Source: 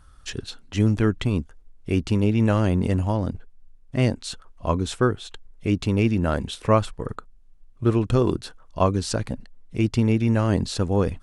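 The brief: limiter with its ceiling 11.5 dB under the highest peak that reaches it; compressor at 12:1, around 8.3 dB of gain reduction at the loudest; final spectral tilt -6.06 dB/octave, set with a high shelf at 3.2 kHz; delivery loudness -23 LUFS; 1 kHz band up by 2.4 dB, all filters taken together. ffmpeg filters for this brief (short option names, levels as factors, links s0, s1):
-af "equalizer=f=1000:t=o:g=3.5,highshelf=f=3200:g=-5.5,acompressor=threshold=0.1:ratio=12,volume=3.76,alimiter=limit=0.282:level=0:latency=1"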